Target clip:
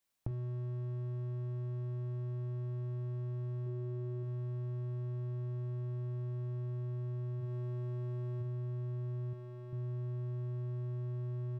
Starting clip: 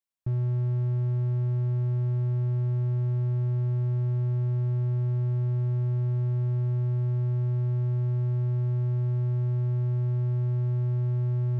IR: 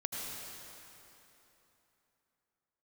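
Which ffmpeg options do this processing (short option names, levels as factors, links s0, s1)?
-filter_complex "[0:a]asettb=1/sr,asplit=3[s0][s1][s2];[s0]atrim=end=3.664[s3];[s1]atrim=start=3.66:end=4.23,asetpts=PTS-STARTPTS,afade=t=in:d=0.004:c=qsin,afade=t=out:st=0.566:d=0.004:c=qsin,equalizer=f=380:t=o:w=0.77:g=7[s4];[s2]atrim=start=4.226[s5];[s3][s4]acrossfade=d=0.004:c1=hsin:c2=qsin[s6];[s6][s5]acrossfade=d=0.004:c1=qsin:c2=hsin,asplit=3[s7][s8][s9];[s7]afade=t=out:st=7.4:d=0.02[s10];[s8]bandreject=f=60:t=h:w=6,bandreject=f=120:t=h:w=6,afade=t=in:st=7.4:d=0.02,afade=t=out:st=8.4:d=0.02[s11];[s9]afade=t=in:st=8.4:d=0.02[s12];[s10][s11][s12]amix=inputs=3:normalize=0,aecho=1:1:19|47:0.596|0.398,acompressor=threshold=0.00562:ratio=6,asettb=1/sr,asplit=3[s13][s14][s15];[s13]atrim=end=9.334[s16];[s14]atrim=start=9.33:end=9.73,asetpts=PTS-STARTPTS,afade=t=in:d=0.004:c=qsin,afade=t=out:st=0.396:d=0.004:c=qsin,equalizer=f=150:t=o:w=0.85:g=-14[s17];[s15]atrim=start=9.726[s18];[s16][s17]acrossfade=d=0.004:c1=hsin:c2=qsin[s19];[s19][s18]acrossfade=d=0.004:c1=qsin:c2=hsin,volume=2.24"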